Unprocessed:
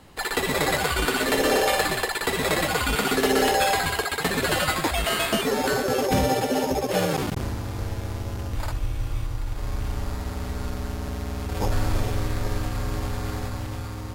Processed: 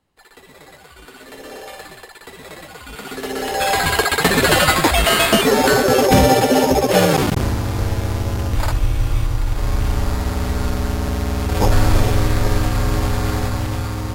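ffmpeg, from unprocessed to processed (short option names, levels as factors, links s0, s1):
-af "volume=2.99,afade=t=in:st=0.86:d=0.82:silence=0.446684,afade=t=in:st=2.82:d=0.67:silence=0.316228,afade=t=in:st=3.49:d=0.53:silence=0.237137"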